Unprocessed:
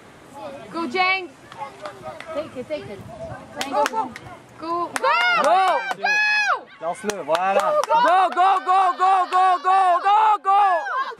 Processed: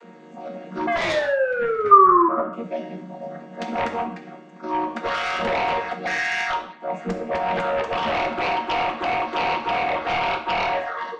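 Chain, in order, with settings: chord vocoder minor triad, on D#3; steep high-pass 170 Hz 96 dB/oct; 0.87–2.29 painted sound fall 330–710 Hz -15 dBFS; sine folder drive 12 dB, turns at -4 dBFS; 1.91–2.53 synth low-pass 1200 Hz, resonance Q 12; non-linear reverb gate 0.21 s falling, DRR 3.5 dB; gain -17 dB

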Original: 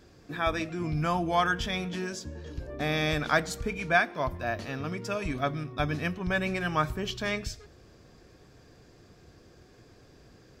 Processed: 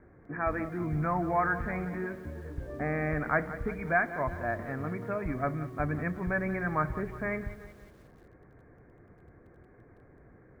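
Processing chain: in parallel at -5 dB: hard clip -27 dBFS, distortion -8 dB; on the sum: steep low-pass 2200 Hz 96 dB/oct; lo-fi delay 0.18 s, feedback 55%, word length 8-bit, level -14 dB; gain -4.5 dB

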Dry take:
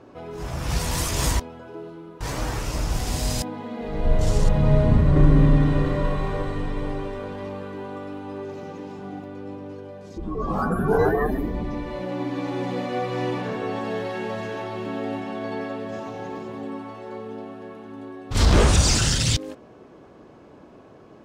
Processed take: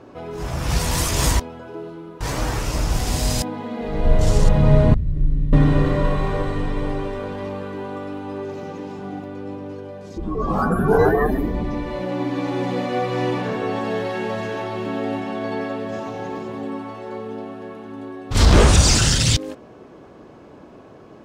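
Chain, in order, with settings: 4.94–5.53 passive tone stack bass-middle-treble 10-0-1; gain +4 dB

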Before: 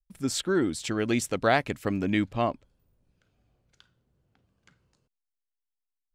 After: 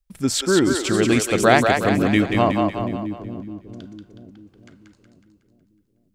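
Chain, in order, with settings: split-band echo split 400 Hz, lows 0.447 s, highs 0.184 s, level -4 dB; gain +7.5 dB

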